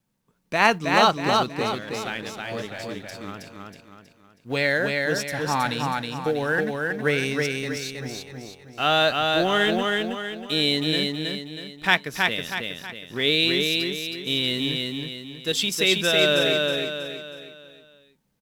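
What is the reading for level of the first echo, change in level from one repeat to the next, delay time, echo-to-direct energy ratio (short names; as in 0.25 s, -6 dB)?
-3.0 dB, -7.5 dB, 0.32 s, -2.0 dB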